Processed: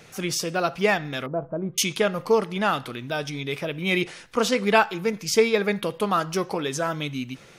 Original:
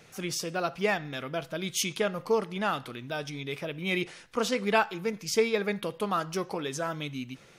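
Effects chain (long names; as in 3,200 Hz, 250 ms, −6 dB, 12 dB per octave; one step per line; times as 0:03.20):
0:01.26–0:01.78: low-pass filter 1,000 Hz 24 dB per octave
level +6 dB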